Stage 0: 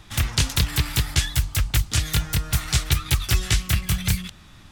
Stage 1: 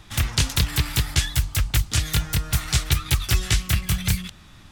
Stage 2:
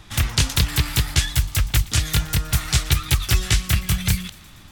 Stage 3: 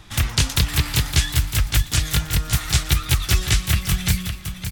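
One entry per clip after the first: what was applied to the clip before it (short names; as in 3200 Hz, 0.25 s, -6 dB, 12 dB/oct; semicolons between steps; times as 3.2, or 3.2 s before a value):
nothing audible
thin delay 0.119 s, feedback 68%, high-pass 1700 Hz, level -20.5 dB; gain +2 dB
echo 0.562 s -9 dB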